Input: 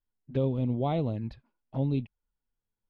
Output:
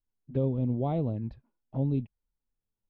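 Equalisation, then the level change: tilt shelf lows +6.5 dB, about 1300 Hz; -6.0 dB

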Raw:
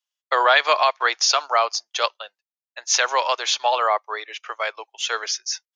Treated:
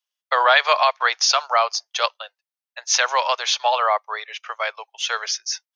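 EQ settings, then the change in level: HPF 500 Hz 24 dB/oct; notch 7100 Hz, Q 7.7; +1.0 dB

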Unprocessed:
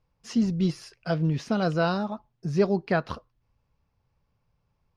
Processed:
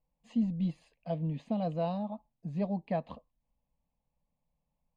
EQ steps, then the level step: running mean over 8 samples; fixed phaser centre 380 Hz, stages 6; -5.5 dB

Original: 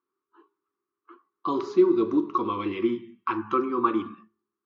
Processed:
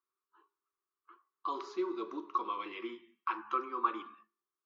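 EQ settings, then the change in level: HPF 640 Hz 12 dB/oct; -6.0 dB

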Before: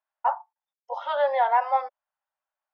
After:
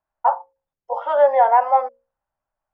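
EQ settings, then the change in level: tilt -5 dB/oct; bell 3900 Hz -11.5 dB 0.23 oct; notches 60/120/180/240/300/360/420/480/540 Hz; +5.5 dB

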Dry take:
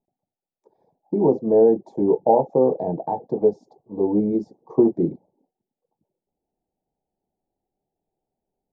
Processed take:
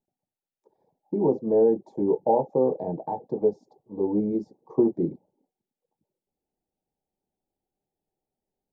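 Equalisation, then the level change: notch 690 Hz, Q 12; -4.5 dB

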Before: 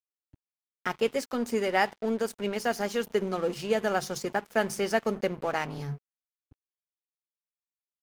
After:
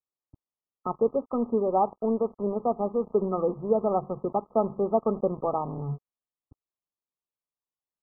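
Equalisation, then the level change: brick-wall FIR low-pass 1300 Hz; +3.0 dB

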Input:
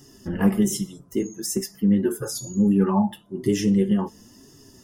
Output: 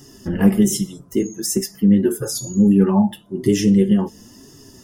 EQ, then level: dynamic EQ 1100 Hz, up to -7 dB, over -44 dBFS, Q 1.4; +5.5 dB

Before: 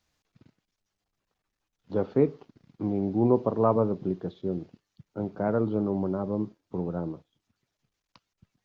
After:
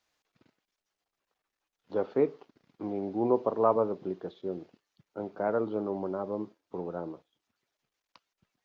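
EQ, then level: tone controls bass -15 dB, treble -3 dB; 0.0 dB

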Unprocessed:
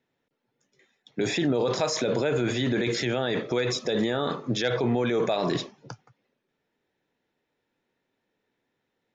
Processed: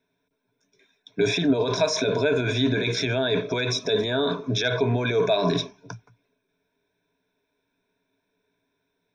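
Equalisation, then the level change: ripple EQ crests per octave 1.6, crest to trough 15 dB; 0.0 dB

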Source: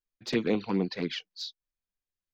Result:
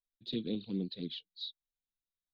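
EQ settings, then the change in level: EQ curve 260 Hz 0 dB, 540 Hz -9 dB, 930 Hz -24 dB, 2200 Hz -17 dB, 3800 Hz +8 dB, 5600 Hz -20 dB; -6.5 dB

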